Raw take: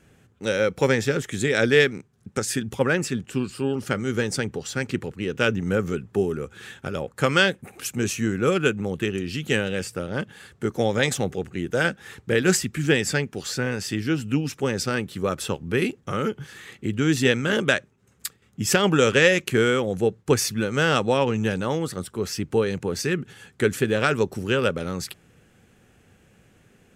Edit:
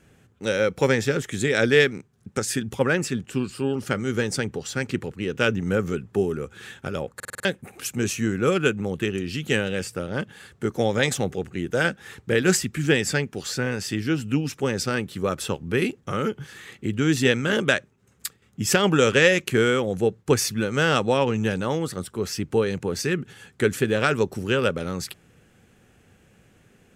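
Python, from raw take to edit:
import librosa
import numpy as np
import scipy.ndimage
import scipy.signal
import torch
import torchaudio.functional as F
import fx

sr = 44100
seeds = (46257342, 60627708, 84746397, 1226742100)

y = fx.edit(x, sr, fx.stutter_over(start_s=7.15, slice_s=0.05, count=6), tone=tone)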